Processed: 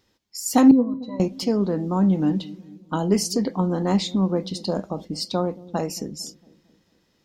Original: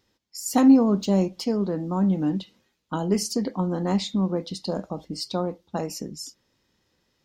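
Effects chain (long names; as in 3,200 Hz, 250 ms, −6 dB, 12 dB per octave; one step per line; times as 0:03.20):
0:00.71–0:01.20: resonances in every octave B, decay 0.1 s
delay with a low-pass on its return 226 ms, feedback 49%, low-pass 430 Hz, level −17 dB
level +3 dB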